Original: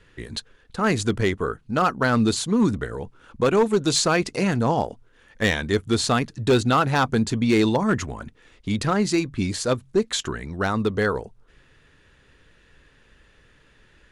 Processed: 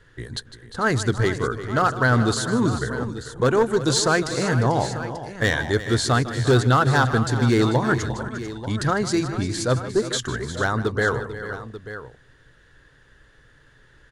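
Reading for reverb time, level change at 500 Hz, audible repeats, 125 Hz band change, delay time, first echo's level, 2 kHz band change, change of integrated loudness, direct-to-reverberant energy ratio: no reverb audible, +0.5 dB, 4, +4.5 dB, 154 ms, −14.5 dB, +3.5 dB, +0.5 dB, no reverb audible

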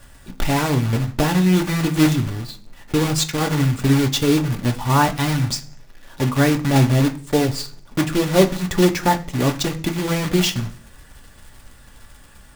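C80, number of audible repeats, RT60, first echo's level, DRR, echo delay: 20.5 dB, no echo audible, 0.45 s, no echo audible, 4.5 dB, no echo audible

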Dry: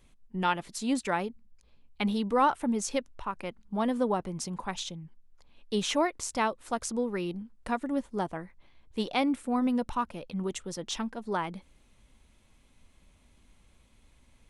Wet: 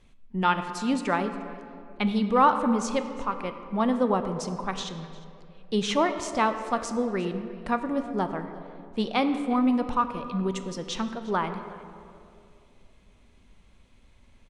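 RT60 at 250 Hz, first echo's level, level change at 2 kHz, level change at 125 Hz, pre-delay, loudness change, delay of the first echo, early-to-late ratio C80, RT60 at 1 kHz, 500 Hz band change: 2.7 s, −21.0 dB, +3.5 dB, +4.5 dB, 4 ms, +4.0 dB, 354 ms, 9.5 dB, 2.3 s, +4.0 dB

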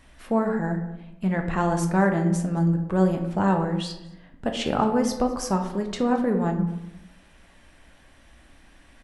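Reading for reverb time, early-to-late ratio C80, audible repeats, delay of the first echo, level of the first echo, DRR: 0.95 s, 10.0 dB, 1, 219 ms, −22.5 dB, 3.5 dB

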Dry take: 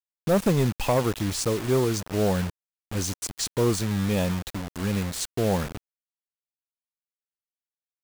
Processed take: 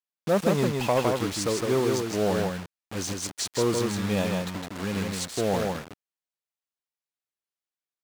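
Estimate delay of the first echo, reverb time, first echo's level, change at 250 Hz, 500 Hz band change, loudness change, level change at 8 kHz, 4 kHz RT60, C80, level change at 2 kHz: 160 ms, no reverb audible, −3.5 dB, −1.5 dB, +0.5 dB, −1.0 dB, −1.5 dB, no reverb audible, no reverb audible, +1.5 dB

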